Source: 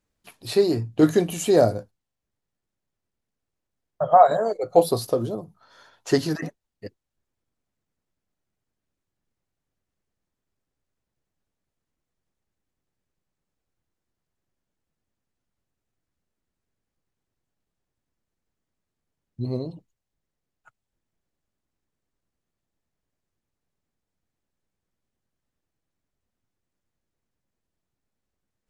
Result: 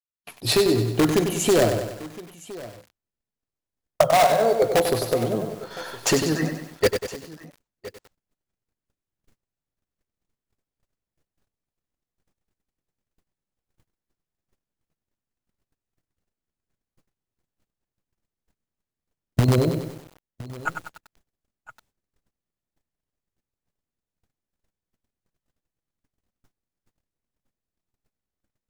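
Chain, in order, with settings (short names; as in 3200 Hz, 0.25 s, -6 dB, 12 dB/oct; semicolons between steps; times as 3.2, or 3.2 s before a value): recorder AGC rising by 24 dB/s; gate -46 dBFS, range -36 dB; spectral gain 6.61–7.51, 350–9100 Hz +9 dB; in parallel at -4.5 dB: wrapped overs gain 9.5 dB; on the sum: modulation noise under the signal 32 dB; on a send: echo 1.014 s -18.5 dB; on the sum: lo-fi delay 96 ms, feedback 55%, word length 6-bit, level -7 dB; gain -5.5 dB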